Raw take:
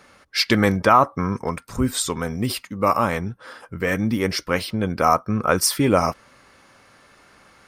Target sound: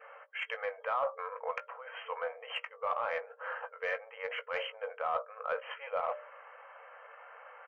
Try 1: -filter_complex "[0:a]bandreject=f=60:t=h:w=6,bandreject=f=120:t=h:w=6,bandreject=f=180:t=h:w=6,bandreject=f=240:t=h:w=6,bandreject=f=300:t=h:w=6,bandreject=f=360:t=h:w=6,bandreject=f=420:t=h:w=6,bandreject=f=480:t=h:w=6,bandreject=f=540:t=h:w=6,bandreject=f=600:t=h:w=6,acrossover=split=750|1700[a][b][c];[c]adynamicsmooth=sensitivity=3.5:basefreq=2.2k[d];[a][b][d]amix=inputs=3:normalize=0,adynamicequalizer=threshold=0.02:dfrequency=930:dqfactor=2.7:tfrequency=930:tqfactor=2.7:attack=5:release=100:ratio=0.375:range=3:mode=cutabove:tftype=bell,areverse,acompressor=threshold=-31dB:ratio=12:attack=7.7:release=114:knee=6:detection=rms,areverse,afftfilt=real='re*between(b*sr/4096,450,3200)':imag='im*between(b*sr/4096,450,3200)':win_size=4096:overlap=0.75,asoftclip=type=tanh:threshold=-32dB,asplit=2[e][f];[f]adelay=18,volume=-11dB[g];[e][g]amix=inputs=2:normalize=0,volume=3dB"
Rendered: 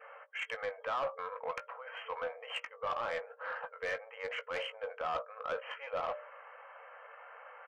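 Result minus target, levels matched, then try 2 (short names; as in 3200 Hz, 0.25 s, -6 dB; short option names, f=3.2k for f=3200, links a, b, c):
soft clip: distortion +12 dB
-filter_complex "[0:a]bandreject=f=60:t=h:w=6,bandreject=f=120:t=h:w=6,bandreject=f=180:t=h:w=6,bandreject=f=240:t=h:w=6,bandreject=f=300:t=h:w=6,bandreject=f=360:t=h:w=6,bandreject=f=420:t=h:w=6,bandreject=f=480:t=h:w=6,bandreject=f=540:t=h:w=6,bandreject=f=600:t=h:w=6,acrossover=split=750|1700[a][b][c];[c]adynamicsmooth=sensitivity=3.5:basefreq=2.2k[d];[a][b][d]amix=inputs=3:normalize=0,adynamicequalizer=threshold=0.02:dfrequency=930:dqfactor=2.7:tfrequency=930:tqfactor=2.7:attack=5:release=100:ratio=0.375:range=3:mode=cutabove:tftype=bell,areverse,acompressor=threshold=-31dB:ratio=12:attack=7.7:release=114:knee=6:detection=rms,areverse,afftfilt=real='re*between(b*sr/4096,450,3200)':imag='im*between(b*sr/4096,450,3200)':win_size=4096:overlap=0.75,asoftclip=type=tanh:threshold=-23dB,asplit=2[e][f];[f]adelay=18,volume=-11dB[g];[e][g]amix=inputs=2:normalize=0,volume=3dB"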